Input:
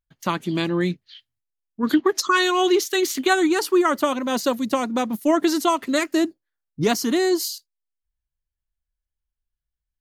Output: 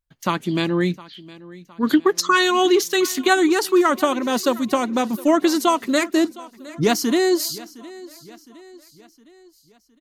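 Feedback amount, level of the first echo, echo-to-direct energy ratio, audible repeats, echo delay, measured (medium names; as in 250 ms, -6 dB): 50%, -20.0 dB, -19.0 dB, 3, 712 ms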